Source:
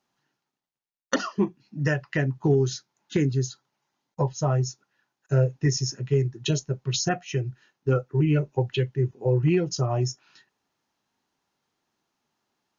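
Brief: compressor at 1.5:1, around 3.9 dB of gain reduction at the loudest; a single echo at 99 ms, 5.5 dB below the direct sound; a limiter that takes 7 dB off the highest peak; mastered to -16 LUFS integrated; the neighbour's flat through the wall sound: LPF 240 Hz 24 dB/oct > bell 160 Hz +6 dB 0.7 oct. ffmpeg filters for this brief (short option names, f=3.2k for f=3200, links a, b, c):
-af "acompressor=threshold=-28dB:ratio=1.5,alimiter=limit=-21dB:level=0:latency=1,lowpass=f=240:w=0.5412,lowpass=f=240:w=1.3066,equalizer=f=160:t=o:w=0.7:g=6,aecho=1:1:99:0.531,volume=13dB"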